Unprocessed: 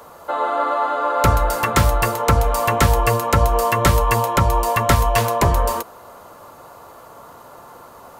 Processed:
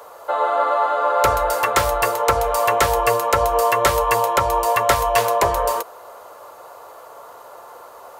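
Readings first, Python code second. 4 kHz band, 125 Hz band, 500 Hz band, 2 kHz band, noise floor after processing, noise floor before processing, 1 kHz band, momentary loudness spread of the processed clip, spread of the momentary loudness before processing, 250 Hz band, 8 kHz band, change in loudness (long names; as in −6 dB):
0.0 dB, −13.0 dB, +2.0 dB, +0.5 dB, −42 dBFS, −43 dBFS, +1.5 dB, 3 LU, 5 LU, −9.5 dB, 0.0 dB, 0.0 dB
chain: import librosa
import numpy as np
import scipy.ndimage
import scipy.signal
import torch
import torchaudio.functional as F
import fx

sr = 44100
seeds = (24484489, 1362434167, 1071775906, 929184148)

y = fx.low_shelf_res(x, sr, hz=330.0, db=-12.0, q=1.5)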